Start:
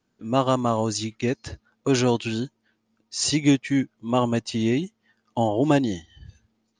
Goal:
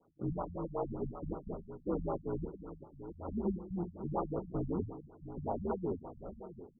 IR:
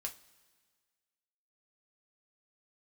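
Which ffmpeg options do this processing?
-filter_complex "[0:a]aeval=exprs='if(lt(val(0),0),0.708*val(0),val(0))':c=same,acrossover=split=260 2900:gain=0.2 1 0.0794[s0][s1][s2];[s0][s1][s2]amix=inputs=3:normalize=0,acompressor=threshold=0.0251:ratio=6,asoftclip=type=tanh:threshold=0.0133,aeval=exprs='val(0)*sin(2*PI*86*n/s)':c=same,aphaser=in_gain=1:out_gain=1:delay=2.4:decay=0.31:speed=0.59:type=sinusoidal,aecho=1:1:672:0.266,asplit=2[s3][s4];[1:a]atrim=start_sample=2205,asetrate=25137,aresample=44100[s5];[s4][s5]afir=irnorm=-1:irlink=0,volume=1.33[s6];[s3][s6]amix=inputs=2:normalize=0,afftfilt=real='re*lt(b*sr/1024,200*pow(1500/200,0.5+0.5*sin(2*PI*5.3*pts/sr)))':imag='im*lt(b*sr/1024,200*pow(1500/200,0.5+0.5*sin(2*PI*5.3*pts/sr)))':win_size=1024:overlap=0.75,volume=1.33"

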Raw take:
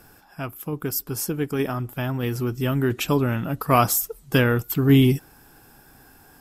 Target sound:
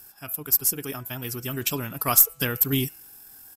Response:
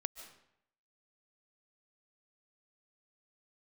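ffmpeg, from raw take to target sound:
-af "crystalizer=i=6:c=0,aeval=exprs='2.99*(cos(1*acos(clip(val(0)/2.99,-1,1)))-cos(1*PI/2))+0.0473*(cos(6*acos(clip(val(0)/2.99,-1,1)))-cos(6*PI/2))':c=same,atempo=1.8,bandreject=f=165.3:t=h:w=4,bandreject=f=330.6:t=h:w=4,bandreject=f=495.9:t=h:w=4,bandreject=f=661.2:t=h:w=4,bandreject=f=826.5:t=h:w=4,bandreject=f=991.8:t=h:w=4,bandreject=f=1157.1:t=h:w=4,bandreject=f=1322.4:t=h:w=4,bandreject=f=1487.7:t=h:w=4,bandreject=f=1653:t=h:w=4,bandreject=f=1818.3:t=h:w=4,bandreject=f=1983.6:t=h:w=4,bandreject=f=2148.9:t=h:w=4,bandreject=f=2314.2:t=h:w=4,bandreject=f=2479.5:t=h:w=4,bandreject=f=2644.8:t=h:w=4,bandreject=f=2810.1:t=h:w=4,bandreject=f=2975.4:t=h:w=4,volume=0.335"

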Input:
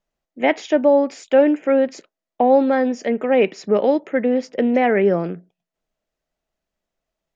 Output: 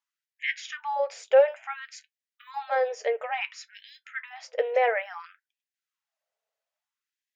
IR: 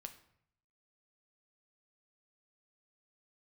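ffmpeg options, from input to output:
-af "flanger=delay=6.1:depth=1.4:regen=-64:speed=0.4:shape=sinusoidal,afftfilt=real='re*gte(b*sr/1024,390*pow(1600/390,0.5+0.5*sin(2*PI*0.58*pts/sr)))':imag='im*gte(b*sr/1024,390*pow(1600/390,0.5+0.5*sin(2*PI*0.58*pts/sr)))':win_size=1024:overlap=0.75"

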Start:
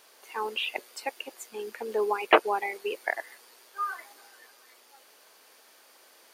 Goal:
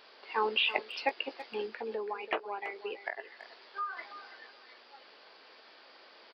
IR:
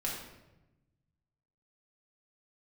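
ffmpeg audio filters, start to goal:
-filter_complex "[0:a]aresample=11025,aresample=44100,asettb=1/sr,asplit=3[s0][s1][s2];[s0]atrim=end=1.664[s3];[s1]atrim=start=1.66:end=3.97,asetpts=PTS-STARTPTS,afade=t=in:d=0.004:c=qsin,afade=t=out:st=2.306:d=0.004:c=qsin,acompressor=threshold=0.00794:ratio=2.5[s4];[s2]atrim=start=3.966[s5];[s3][s4]acrossfade=d=0.004:c1=hsin:c2=qsin[s6];[s6][s5]acrossfade=d=0.004:c1=qsin:c2=hsin,asplit=2[s7][s8];[s8]adelay=18,volume=0.251[s9];[s7][s9]amix=inputs=2:normalize=0,asplit=2[s10][s11];[s11]adelay=330,highpass=300,lowpass=3400,asoftclip=type=hard:threshold=0.0631,volume=0.224[s12];[s10][s12]amix=inputs=2:normalize=0,volume=1.33"

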